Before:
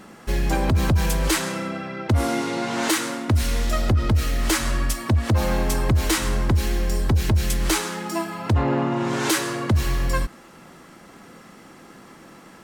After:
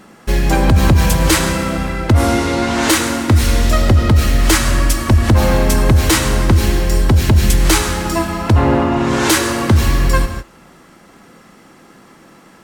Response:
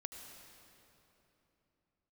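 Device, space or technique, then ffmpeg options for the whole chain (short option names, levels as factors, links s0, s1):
keyed gated reverb: -filter_complex "[0:a]asplit=3[s0][s1][s2];[1:a]atrim=start_sample=2205[s3];[s1][s3]afir=irnorm=-1:irlink=0[s4];[s2]apad=whole_len=557029[s5];[s4][s5]sidechaingate=range=0.0224:threshold=0.0112:ratio=16:detection=peak,volume=1.88[s6];[s0][s6]amix=inputs=2:normalize=0,volume=1.19"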